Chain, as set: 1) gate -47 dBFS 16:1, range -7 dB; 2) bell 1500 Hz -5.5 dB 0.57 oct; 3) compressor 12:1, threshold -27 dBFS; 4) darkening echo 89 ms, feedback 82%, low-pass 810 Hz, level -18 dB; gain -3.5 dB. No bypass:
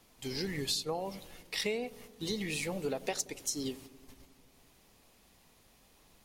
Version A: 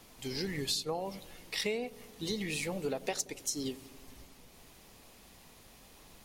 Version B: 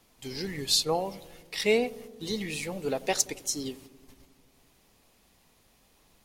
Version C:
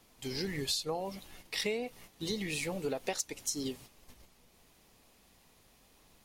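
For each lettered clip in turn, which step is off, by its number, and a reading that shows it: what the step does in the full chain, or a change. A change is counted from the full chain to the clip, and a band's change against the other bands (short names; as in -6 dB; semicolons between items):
1, momentary loudness spread change +13 LU; 3, mean gain reduction 3.0 dB; 4, echo-to-direct -21.5 dB to none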